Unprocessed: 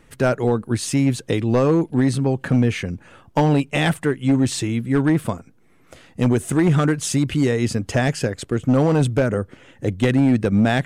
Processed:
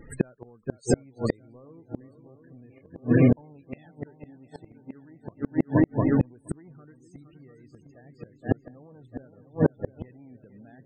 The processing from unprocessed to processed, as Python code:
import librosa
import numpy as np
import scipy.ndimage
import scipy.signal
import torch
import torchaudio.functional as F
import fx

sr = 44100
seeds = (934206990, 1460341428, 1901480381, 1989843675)

y = fx.low_shelf(x, sr, hz=76.0, db=-8.5, at=(4.25, 5.19), fade=0.02)
y = fx.echo_heads(y, sr, ms=233, heads='second and third', feedback_pct=66, wet_db=-8.0)
y = fx.spec_topn(y, sr, count=32)
y = fx.gate_flip(y, sr, shuts_db=-13.0, range_db=-39)
y = y * librosa.db_to_amplitude(5.5)